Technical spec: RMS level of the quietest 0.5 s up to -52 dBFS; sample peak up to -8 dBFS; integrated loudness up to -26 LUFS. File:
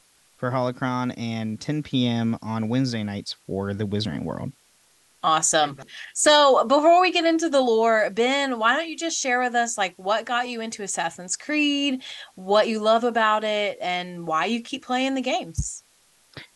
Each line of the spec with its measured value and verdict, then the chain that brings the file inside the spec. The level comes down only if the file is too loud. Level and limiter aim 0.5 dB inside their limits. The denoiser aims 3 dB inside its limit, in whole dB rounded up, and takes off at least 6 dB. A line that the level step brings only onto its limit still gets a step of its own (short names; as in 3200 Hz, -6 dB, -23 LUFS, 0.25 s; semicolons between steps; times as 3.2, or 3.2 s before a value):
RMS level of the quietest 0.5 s -60 dBFS: OK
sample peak -5.5 dBFS: fail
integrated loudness -22.5 LUFS: fail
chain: gain -4 dB